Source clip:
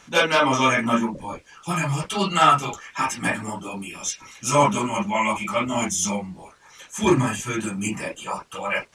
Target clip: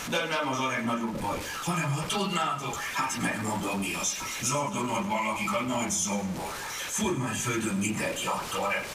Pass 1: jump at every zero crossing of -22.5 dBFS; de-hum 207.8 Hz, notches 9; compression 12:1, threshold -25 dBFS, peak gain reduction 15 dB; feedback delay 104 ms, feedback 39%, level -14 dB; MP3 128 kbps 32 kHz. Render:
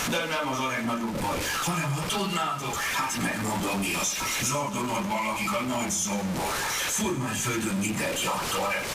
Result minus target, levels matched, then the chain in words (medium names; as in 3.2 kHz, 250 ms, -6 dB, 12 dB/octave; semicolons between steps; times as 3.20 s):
jump at every zero crossing: distortion +7 dB
jump at every zero crossing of -31 dBFS; de-hum 207.8 Hz, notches 9; compression 12:1, threshold -25 dBFS, peak gain reduction 14.5 dB; feedback delay 104 ms, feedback 39%, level -14 dB; MP3 128 kbps 32 kHz